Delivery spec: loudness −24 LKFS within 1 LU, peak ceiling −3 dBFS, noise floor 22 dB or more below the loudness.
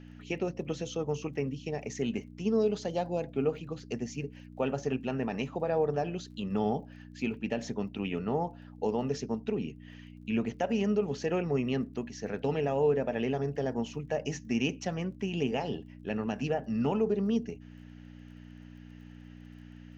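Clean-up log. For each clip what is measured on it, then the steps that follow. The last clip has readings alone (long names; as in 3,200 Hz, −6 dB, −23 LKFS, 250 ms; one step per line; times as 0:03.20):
crackle rate 19 per second; mains hum 60 Hz; hum harmonics up to 300 Hz; level of the hum −46 dBFS; integrated loudness −32.5 LKFS; sample peak −16.0 dBFS; target loudness −24.0 LKFS
→ click removal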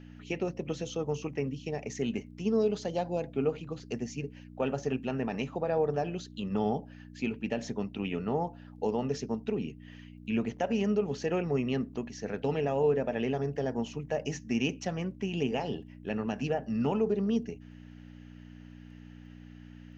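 crackle rate 0 per second; mains hum 60 Hz; hum harmonics up to 300 Hz; level of the hum −46 dBFS
→ hum removal 60 Hz, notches 5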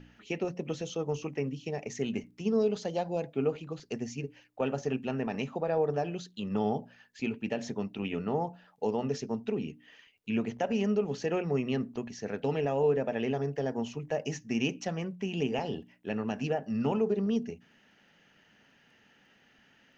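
mains hum none found; integrated loudness −33.0 LKFS; sample peak −16.0 dBFS; target loudness −24.0 LKFS
→ level +9 dB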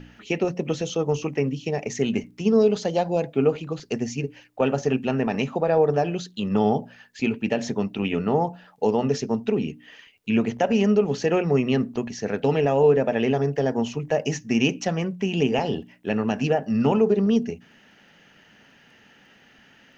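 integrated loudness −24.0 LKFS; sample peak −7.0 dBFS; background noise floor −55 dBFS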